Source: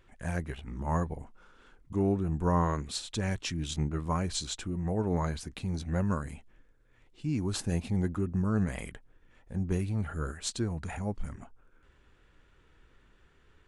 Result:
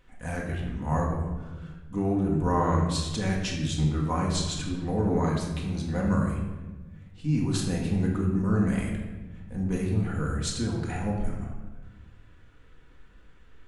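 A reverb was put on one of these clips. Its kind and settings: shoebox room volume 810 m³, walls mixed, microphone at 1.9 m

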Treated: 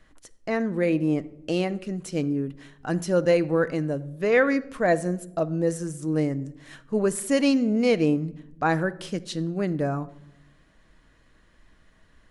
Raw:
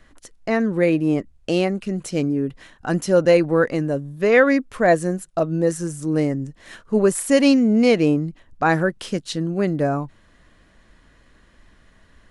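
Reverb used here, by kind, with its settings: shoebox room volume 2700 m³, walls furnished, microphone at 0.55 m; gain -5.5 dB

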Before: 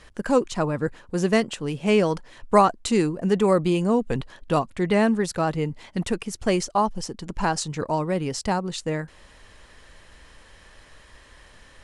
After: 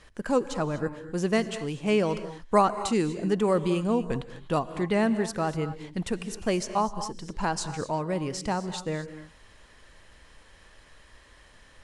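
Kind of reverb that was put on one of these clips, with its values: non-linear reverb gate 0.27 s rising, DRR 11.5 dB; gain -4.5 dB

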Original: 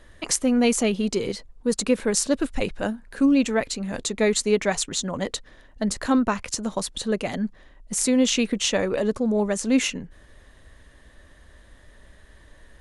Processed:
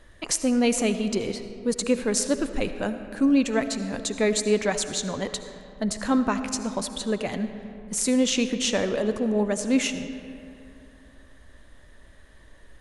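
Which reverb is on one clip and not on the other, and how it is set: digital reverb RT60 2.8 s, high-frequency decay 0.5×, pre-delay 35 ms, DRR 9.5 dB; gain -2 dB

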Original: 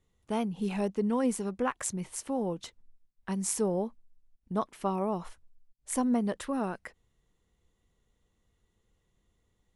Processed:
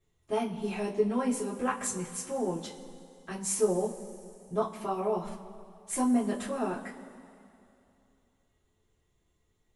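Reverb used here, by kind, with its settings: two-slope reverb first 0.21 s, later 2.7 s, from -21 dB, DRR -7.5 dB; gain -7 dB

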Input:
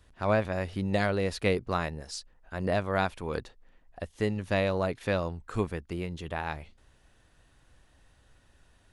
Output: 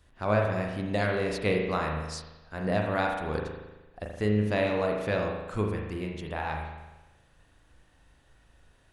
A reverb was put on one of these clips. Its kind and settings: spring tank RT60 1.1 s, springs 38 ms, chirp 55 ms, DRR 0.5 dB; gain -1.5 dB

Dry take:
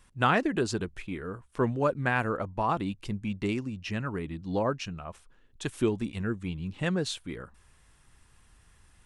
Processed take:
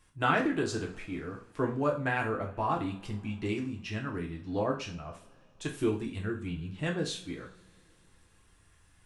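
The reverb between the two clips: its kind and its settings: two-slope reverb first 0.37 s, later 3.5 s, from -28 dB, DRR -0.5 dB; gain -5.5 dB

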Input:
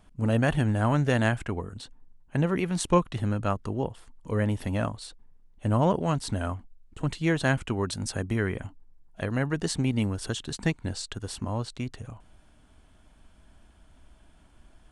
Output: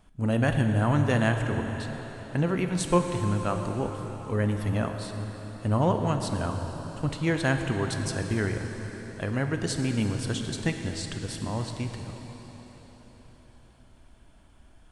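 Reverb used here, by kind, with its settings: plate-style reverb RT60 4.9 s, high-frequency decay 0.9×, DRR 4.5 dB; gain -1 dB

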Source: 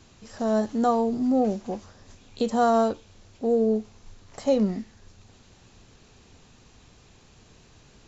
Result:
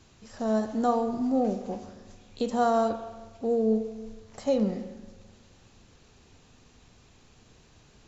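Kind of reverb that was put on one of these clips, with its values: spring tank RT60 1.3 s, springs 41/45 ms, chirp 55 ms, DRR 8.5 dB; gain -3.5 dB

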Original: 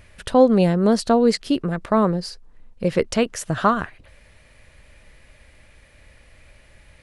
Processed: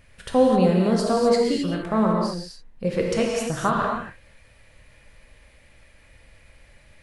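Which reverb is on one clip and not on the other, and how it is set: non-linear reverb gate 0.29 s flat, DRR -2 dB; gain -6 dB

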